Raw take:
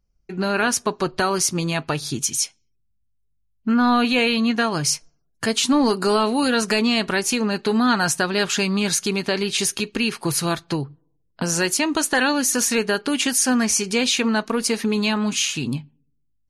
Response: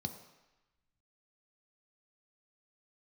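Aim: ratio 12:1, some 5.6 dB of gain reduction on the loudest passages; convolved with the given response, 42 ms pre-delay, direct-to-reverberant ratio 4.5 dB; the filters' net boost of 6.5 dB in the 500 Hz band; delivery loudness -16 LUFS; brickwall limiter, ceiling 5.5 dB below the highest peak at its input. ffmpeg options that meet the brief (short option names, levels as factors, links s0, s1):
-filter_complex "[0:a]equalizer=f=500:t=o:g=8,acompressor=threshold=0.158:ratio=12,alimiter=limit=0.224:level=0:latency=1,asplit=2[s0][s1];[1:a]atrim=start_sample=2205,adelay=42[s2];[s1][s2]afir=irnorm=-1:irlink=0,volume=0.631[s3];[s0][s3]amix=inputs=2:normalize=0,volume=1.5"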